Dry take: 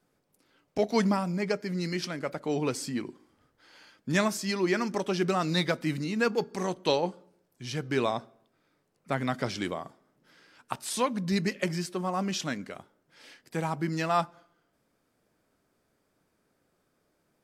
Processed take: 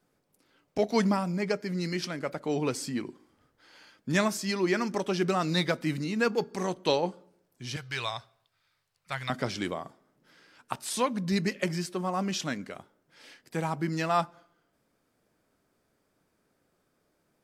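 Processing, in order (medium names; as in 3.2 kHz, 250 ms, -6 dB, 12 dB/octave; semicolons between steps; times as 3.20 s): 7.76–9.30 s: FFT filter 110 Hz 0 dB, 250 Hz -23 dB, 920 Hz -4 dB, 4.3 kHz +6 dB, 6.3 kHz +1 dB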